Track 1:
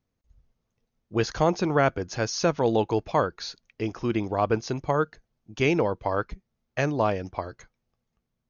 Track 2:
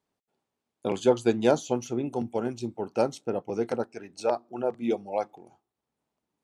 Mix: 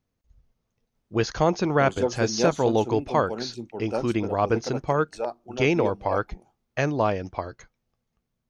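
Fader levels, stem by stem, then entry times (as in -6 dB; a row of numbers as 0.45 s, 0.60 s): +1.0 dB, -3.5 dB; 0.00 s, 0.95 s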